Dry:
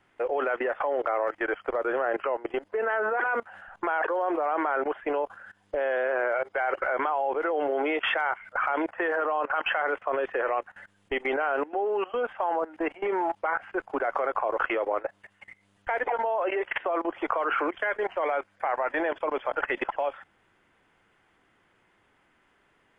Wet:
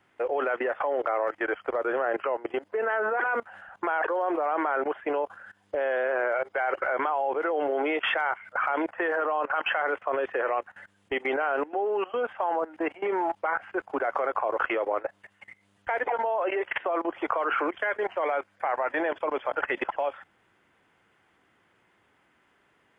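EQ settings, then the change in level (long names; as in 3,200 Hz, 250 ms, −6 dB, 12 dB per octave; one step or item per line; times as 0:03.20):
high-pass filter 65 Hz
0.0 dB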